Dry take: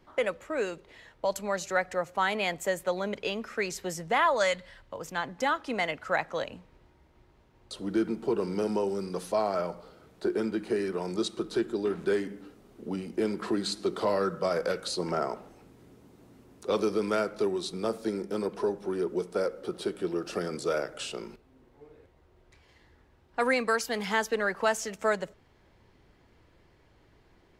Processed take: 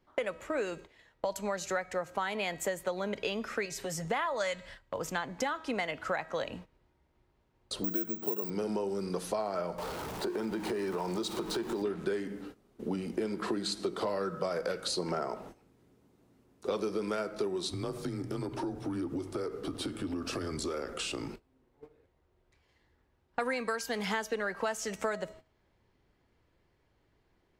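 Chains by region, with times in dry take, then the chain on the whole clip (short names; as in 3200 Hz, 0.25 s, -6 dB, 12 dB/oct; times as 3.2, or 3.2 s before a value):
3.65–4.05 compressor 3:1, threshold -39 dBFS + comb 7.2 ms, depth 64%
7.84–8.5 HPF 110 Hz + careless resampling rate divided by 2×, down none, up zero stuff
9.78–11.82 zero-crossing step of -40.5 dBFS + bell 910 Hz +8.5 dB 0.46 oct + compressor 2.5:1, threshold -35 dBFS
17.69–21.29 compressor 4:1, threshold -35 dBFS + frequency shift -79 Hz
whole clip: de-hum 319.8 Hz, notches 30; gate -49 dBFS, range -14 dB; compressor, threshold -34 dBFS; gain +4 dB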